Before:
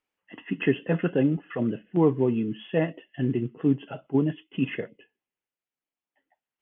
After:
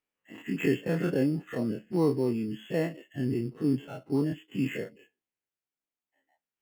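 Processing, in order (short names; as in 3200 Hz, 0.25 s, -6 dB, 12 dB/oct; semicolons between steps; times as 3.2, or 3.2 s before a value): spectral dilation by 60 ms; bell 890 Hz -4 dB 1.1 oct; in parallel at -8 dB: sample-and-hold 9×; on the sum: gain -9 dB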